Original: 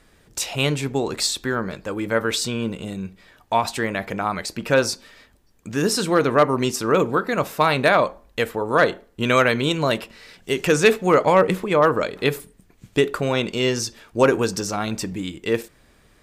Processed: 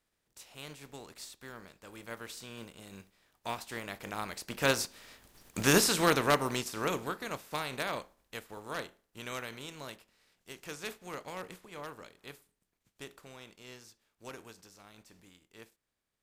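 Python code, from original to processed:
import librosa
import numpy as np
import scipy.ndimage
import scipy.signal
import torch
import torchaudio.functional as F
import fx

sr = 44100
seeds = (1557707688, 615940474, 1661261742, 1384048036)

y = fx.spec_flatten(x, sr, power=0.59)
y = fx.doppler_pass(y, sr, speed_mps=6, closest_m=1.6, pass_at_s=5.47)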